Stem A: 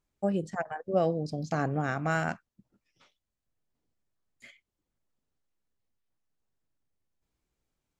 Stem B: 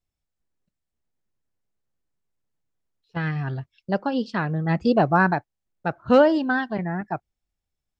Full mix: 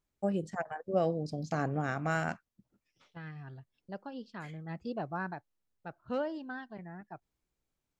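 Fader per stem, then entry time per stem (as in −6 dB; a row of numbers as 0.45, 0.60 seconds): −3.0, −18.5 decibels; 0.00, 0.00 seconds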